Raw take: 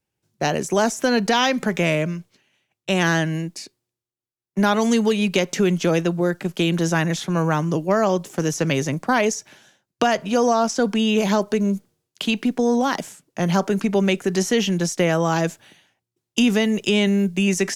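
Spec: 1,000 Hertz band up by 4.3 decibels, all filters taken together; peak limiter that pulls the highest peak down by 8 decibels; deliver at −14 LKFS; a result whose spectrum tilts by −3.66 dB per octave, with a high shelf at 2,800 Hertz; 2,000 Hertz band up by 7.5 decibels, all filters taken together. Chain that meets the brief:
parametric band 1,000 Hz +3.5 dB
parametric band 2,000 Hz +5.5 dB
high-shelf EQ 2,800 Hz +7.5 dB
level +5 dB
brickwall limiter −1.5 dBFS

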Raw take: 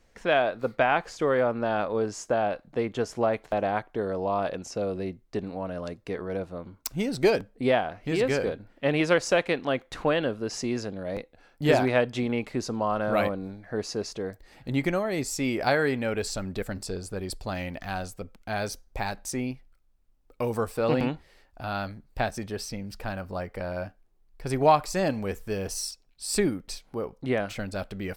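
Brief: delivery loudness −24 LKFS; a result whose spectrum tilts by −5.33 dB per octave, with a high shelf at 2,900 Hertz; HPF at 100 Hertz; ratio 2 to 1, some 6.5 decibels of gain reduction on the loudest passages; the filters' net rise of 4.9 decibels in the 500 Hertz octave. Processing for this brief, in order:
high-pass filter 100 Hz
parametric band 500 Hz +6 dB
high-shelf EQ 2,900 Hz −3 dB
downward compressor 2 to 1, threshold −24 dBFS
level +5 dB

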